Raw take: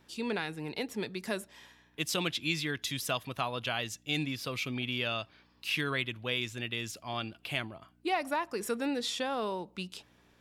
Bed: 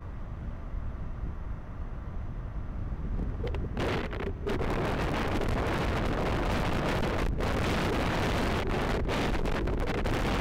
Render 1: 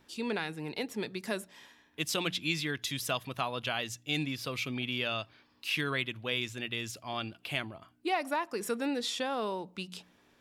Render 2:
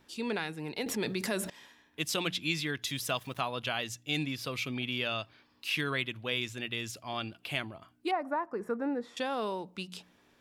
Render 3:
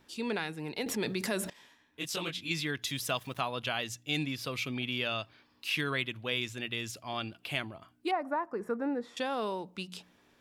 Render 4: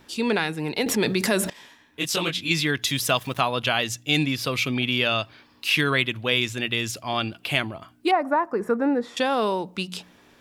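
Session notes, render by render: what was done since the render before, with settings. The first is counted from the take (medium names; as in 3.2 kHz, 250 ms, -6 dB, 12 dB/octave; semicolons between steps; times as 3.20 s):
de-hum 60 Hz, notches 3
0.86–1.50 s: level flattener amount 70%; 2.87–3.41 s: small samples zeroed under -53.5 dBFS; 8.11–9.17 s: FFT filter 1.2 kHz 0 dB, 1.8 kHz -5 dB, 3 kHz -23 dB
1.53–2.51 s: detune thickener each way 57 cents
trim +10.5 dB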